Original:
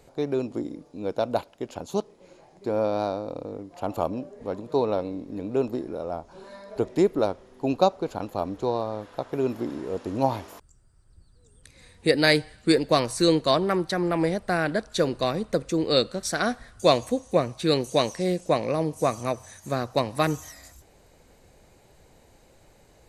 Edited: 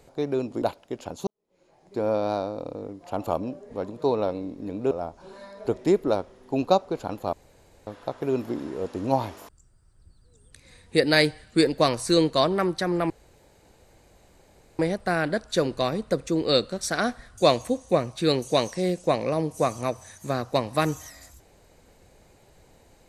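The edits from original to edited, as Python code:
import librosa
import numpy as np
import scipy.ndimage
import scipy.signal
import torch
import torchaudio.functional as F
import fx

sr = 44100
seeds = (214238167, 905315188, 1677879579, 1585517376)

y = fx.edit(x, sr, fx.cut(start_s=0.62, length_s=0.7),
    fx.fade_in_span(start_s=1.97, length_s=0.7, curve='qua'),
    fx.cut(start_s=5.61, length_s=0.41),
    fx.room_tone_fill(start_s=8.44, length_s=0.54),
    fx.insert_room_tone(at_s=14.21, length_s=1.69), tone=tone)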